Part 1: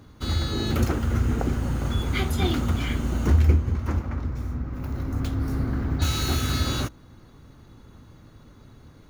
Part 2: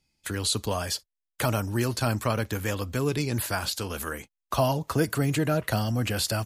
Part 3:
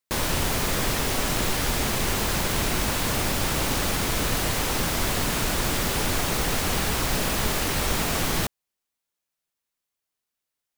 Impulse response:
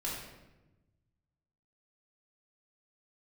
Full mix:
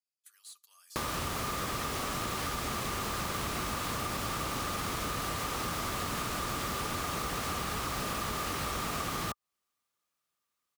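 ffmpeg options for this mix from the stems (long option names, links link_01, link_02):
-filter_complex "[1:a]highpass=1200,aderivative,asoftclip=type=tanh:threshold=-22dB,volume=-19.5dB[link_01];[2:a]highpass=48,highshelf=frequency=9800:gain=-3.5,adelay=850,volume=1dB[link_02];[link_01][link_02]amix=inputs=2:normalize=0,equalizer=frequency=1200:width=7.9:gain=14,acompressor=threshold=-25dB:ratio=6,volume=0dB,acompressor=threshold=-42dB:ratio=1.5"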